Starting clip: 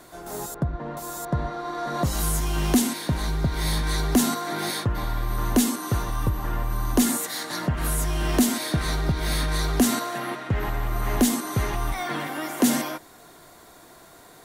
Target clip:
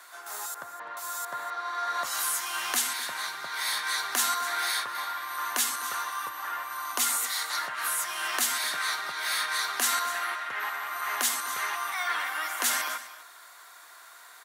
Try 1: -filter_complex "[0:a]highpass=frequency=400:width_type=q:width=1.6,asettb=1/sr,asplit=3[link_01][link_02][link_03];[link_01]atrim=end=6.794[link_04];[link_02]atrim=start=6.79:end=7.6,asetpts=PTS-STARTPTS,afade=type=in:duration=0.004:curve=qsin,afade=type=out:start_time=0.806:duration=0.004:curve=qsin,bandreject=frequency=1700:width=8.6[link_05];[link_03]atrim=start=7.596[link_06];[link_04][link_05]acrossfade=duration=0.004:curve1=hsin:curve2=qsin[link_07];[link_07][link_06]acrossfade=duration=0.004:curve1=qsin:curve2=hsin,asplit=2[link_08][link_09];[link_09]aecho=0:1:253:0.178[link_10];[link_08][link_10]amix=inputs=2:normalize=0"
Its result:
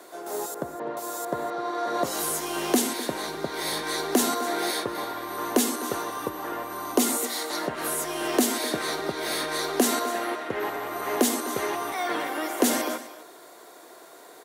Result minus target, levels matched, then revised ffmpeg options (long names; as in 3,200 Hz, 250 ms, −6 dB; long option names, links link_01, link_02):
500 Hz band +15.5 dB
-filter_complex "[0:a]highpass=frequency=1300:width_type=q:width=1.6,asettb=1/sr,asplit=3[link_01][link_02][link_03];[link_01]atrim=end=6.794[link_04];[link_02]atrim=start=6.79:end=7.6,asetpts=PTS-STARTPTS,afade=type=in:duration=0.004:curve=qsin,afade=type=out:start_time=0.806:duration=0.004:curve=qsin,bandreject=frequency=1700:width=8.6[link_05];[link_03]atrim=start=7.596[link_06];[link_04][link_05]acrossfade=duration=0.004:curve1=hsin:curve2=qsin[link_07];[link_07][link_06]acrossfade=duration=0.004:curve1=qsin:curve2=hsin,asplit=2[link_08][link_09];[link_09]aecho=0:1:253:0.178[link_10];[link_08][link_10]amix=inputs=2:normalize=0"